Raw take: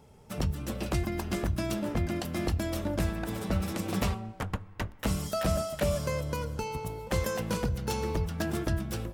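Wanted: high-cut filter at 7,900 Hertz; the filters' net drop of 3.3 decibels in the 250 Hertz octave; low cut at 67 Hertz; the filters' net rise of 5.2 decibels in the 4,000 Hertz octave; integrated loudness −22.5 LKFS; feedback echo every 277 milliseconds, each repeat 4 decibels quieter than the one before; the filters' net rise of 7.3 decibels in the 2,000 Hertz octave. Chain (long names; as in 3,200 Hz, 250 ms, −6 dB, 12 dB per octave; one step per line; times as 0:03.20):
high-pass filter 67 Hz
low-pass filter 7,900 Hz
parametric band 250 Hz −5 dB
parametric band 2,000 Hz +8 dB
parametric band 4,000 Hz +4.5 dB
repeating echo 277 ms, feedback 63%, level −4 dB
level +7.5 dB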